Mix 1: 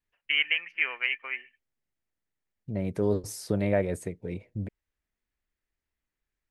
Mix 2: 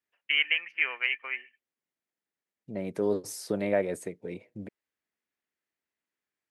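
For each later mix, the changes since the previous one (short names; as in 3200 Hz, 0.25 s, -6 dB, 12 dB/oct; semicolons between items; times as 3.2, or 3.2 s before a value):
master: add HPF 230 Hz 12 dB/oct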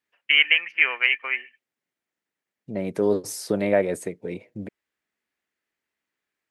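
first voice +8.0 dB; second voice +6.0 dB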